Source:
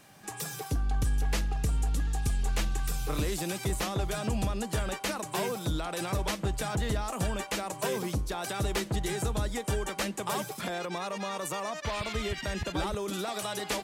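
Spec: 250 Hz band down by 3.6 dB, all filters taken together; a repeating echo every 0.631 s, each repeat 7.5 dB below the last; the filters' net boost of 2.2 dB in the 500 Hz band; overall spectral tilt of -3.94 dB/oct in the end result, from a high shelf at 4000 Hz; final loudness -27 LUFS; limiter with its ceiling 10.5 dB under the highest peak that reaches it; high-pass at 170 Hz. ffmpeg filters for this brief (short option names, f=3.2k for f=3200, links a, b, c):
-af "highpass=170,equalizer=f=250:t=o:g=-5,equalizer=f=500:t=o:g=4.5,highshelf=f=4k:g=-6.5,alimiter=level_in=4.5dB:limit=-24dB:level=0:latency=1,volume=-4.5dB,aecho=1:1:631|1262|1893|2524|3155:0.422|0.177|0.0744|0.0312|0.0131,volume=10dB"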